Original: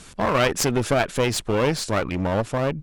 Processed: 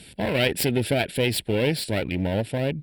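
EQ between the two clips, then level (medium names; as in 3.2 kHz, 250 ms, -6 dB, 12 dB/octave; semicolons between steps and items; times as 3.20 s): high-pass 56 Hz; treble shelf 3.7 kHz +7 dB; static phaser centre 2.8 kHz, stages 4; 0.0 dB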